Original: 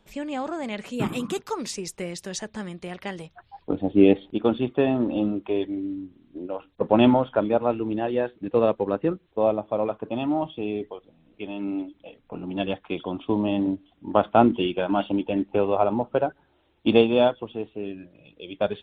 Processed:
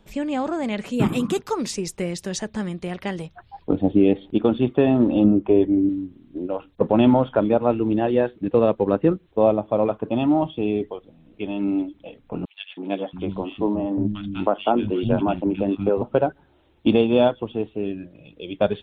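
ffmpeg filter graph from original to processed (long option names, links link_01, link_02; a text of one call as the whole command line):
ffmpeg -i in.wav -filter_complex "[0:a]asettb=1/sr,asplit=3[link_01][link_02][link_03];[link_01]atrim=end=5.244[link_04];[link_02]atrim=start=5.24:end=5.89,asetpts=PTS-STARTPTS,afade=type=in:duration=0.004:curve=qsin,afade=type=out:start_time=0.646:duration=0.004:curve=qsin,lowpass=frequency=3400:width=0.5412,lowpass=frequency=3400:width=1.3066,tiltshelf=frequency=1100:gain=5.5[link_05];[link_03]atrim=start=5.886[link_06];[link_04][link_05]acrossfade=duration=0.004:curve1=hsin:curve2=qsin[link_07];[link_07][link_06]acrossfade=duration=0.004:curve1=qsin:curve2=hsin,asettb=1/sr,asplit=3[link_08][link_09][link_10];[link_08]atrim=end=12.454[link_11];[link_09]atrim=start=12.45:end=16.02,asetpts=PTS-STARTPTS,afade=type=in:duration=0.004:curve=qsin,afade=type=out:start_time=3.566:duration=0.004:curve=qsin,tremolo=f=100:d=0.571,acrossover=split=220|2000[link_12][link_13][link_14];[link_13]adelay=320[link_15];[link_12]adelay=680[link_16];[link_16][link_15][link_14]amix=inputs=3:normalize=0,atrim=end_sample=157437[link_17];[link_10]atrim=start=16.016[link_18];[link_11][link_17]acrossfade=duration=0.004:curve1=hsin:curve2=qsin[link_19];[link_19][link_18]acrossfade=duration=0.004:curve1=qsin:curve2=hsin,lowshelf=frequency=390:gain=6,alimiter=limit=-9dB:level=0:latency=1:release=231,volume=2.5dB" out.wav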